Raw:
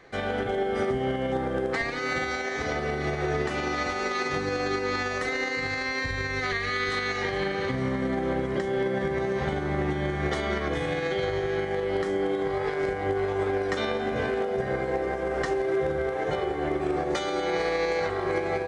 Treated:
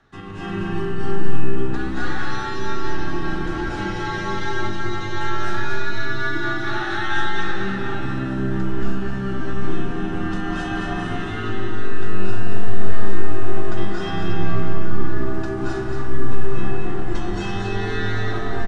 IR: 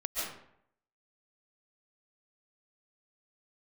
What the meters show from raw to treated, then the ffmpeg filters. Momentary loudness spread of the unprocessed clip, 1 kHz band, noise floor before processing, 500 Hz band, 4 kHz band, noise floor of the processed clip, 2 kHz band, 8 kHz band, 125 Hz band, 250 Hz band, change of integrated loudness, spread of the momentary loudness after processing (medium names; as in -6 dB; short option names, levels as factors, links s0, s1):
2 LU, +2.0 dB, -31 dBFS, -3.0 dB, +1.5 dB, -26 dBFS, +2.0 dB, -0.5 dB, +8.0 dB, +5.0 dB, +1.5 dB, 4 LU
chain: -filter_complex "[0:a]afreqshift=-390,aecho=1:1:228:0.562[s0];[1:a]atrim=start_sample=2205,asetrate=24255,aresample=44100[s1];[s0][s1]afir=irnorm=-1:irlink=0,volume=0.447"